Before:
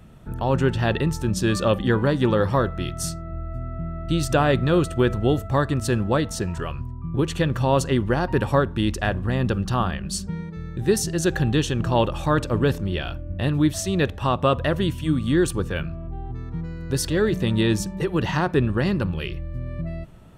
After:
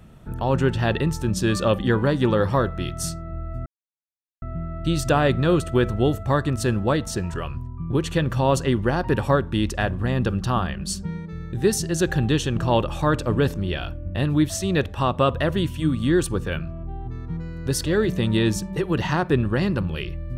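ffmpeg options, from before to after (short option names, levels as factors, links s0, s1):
-filter_complex "[0:a]asplit=2[s0][s1];[s0]atrim=end=3.66,asetpts=PTS-STARTPTS,afade=t=out:st=3.656:d=0.004:c=hsin,apad=pad_dur=0.76[s2];[s1]atrim=start=3.66,asetpts=PTS-STARTPTS,afade=t=in:d=0.004:c=hsin[s3];[s2][s3]concat=n=2:v=0:a=1"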